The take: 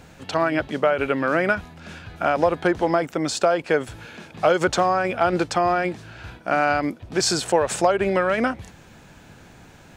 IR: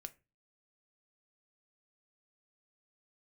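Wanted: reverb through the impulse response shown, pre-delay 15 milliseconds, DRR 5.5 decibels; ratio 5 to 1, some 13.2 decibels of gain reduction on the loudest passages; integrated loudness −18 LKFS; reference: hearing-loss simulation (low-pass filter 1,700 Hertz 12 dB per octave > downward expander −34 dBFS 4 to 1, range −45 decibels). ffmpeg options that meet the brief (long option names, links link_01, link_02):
-filter_complex "[0:a]acompressor=threshold=-29dB:ratio=5,asplit=2[link_01][link_02];[1:a]atrim=start_sample=2205,adelay=15[link_03];[link_02][link_03]afir=irnorm=-1:irlink=0,volume=0dB[link_04];[link_01][link_04]amix=inputs=2:normalize=0,lowpass=1700,agate=range=-45dB:threshold=-34dB:ratio=4,volume=14.5dB"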